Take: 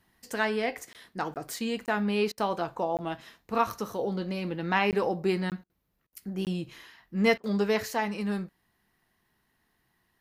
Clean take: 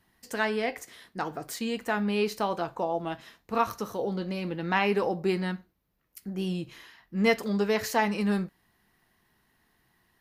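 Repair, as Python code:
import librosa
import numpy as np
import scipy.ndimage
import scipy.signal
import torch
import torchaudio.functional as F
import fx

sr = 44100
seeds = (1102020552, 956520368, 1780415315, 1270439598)

y = fx.fix_interpolate(x, sr, at_s=(0.93, 1.34, 1.86, 2.97, 4.91, 5.5, 6.45), length_ms=18.0)
y = fx.fix_interpolate(y, sr, at_s=(2.32, 5.64, 6.07, 7.38), length_ms=56.0)
y = fx.fix_level(y, sr, at_s=7.83, step_db=4.0)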